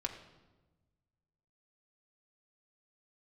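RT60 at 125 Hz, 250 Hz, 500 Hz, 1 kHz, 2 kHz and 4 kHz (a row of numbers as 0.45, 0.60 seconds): 2.0, 1.6, 1.3, 1.1, 0.90, 0.85 seconds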